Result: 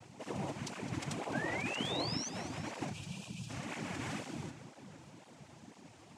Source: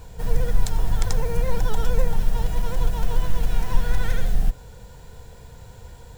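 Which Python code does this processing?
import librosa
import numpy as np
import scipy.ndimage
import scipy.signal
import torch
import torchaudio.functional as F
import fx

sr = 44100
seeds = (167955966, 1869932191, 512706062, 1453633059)

p1 = fx.noise_vocoder(x, sr, seeds[0], bands=4)
p2 = fx.spec_paint(p1, sr, seeds[1], shape='rise', start_s=1.33, length_s=0.96, low_hz=1500.0, high_hz=6300.0, level_db=-33.0)
p3 = fx.brickwall_bandstop(p2, sr, low_hz=220.0, high_hz=2300.0, at=(2.92, 3.49), fade=0.02)
p4 = p3 + fx.echo_split(p3, sr, split_hz=1700.0, low_ms=418, high_ms=211, feedback_pct=52, wet_db=-14.0, dry=0)
p5 = fx.vibrato(p4, sr, rate_hz=4.4, depth_cents=30.0)
p6 = fx.flanger_cancel(p5, sr, hz=2.0, depth_ms=5.4)
y = p6 * 10.0 ** (-5.5 / 20.0)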